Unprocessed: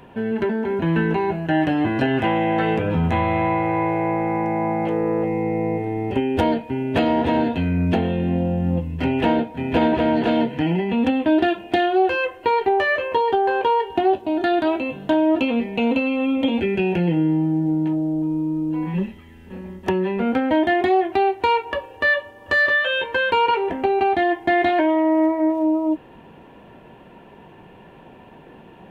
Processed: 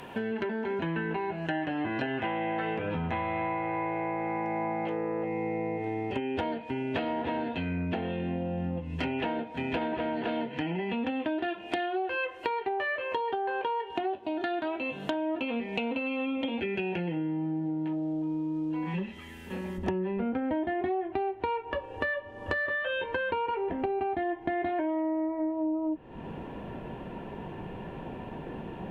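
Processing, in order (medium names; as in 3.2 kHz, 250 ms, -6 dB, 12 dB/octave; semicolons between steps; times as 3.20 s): low-pass that closes with the level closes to 2.7 kHz, closed at -16.5 dBFS; tilt EQ +2 dB/octave, from 19.77 s -1.5 dB/octave; compression 5:1, threshold -33 dBFS, peak gain reduction 18.5 dB; trim +3 dB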